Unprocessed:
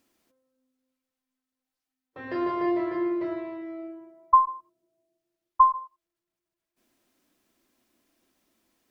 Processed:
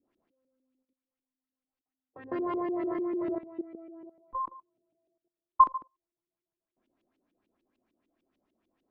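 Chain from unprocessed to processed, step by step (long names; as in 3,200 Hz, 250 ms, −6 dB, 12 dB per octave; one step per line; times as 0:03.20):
parametric band 1,800 Hz −7.5 dB 1.7 octaves
auto-filter low-pass saw up 6.7 Hz 280–3,200 Hz
output level in coarse steps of 16 dB
level +1 dB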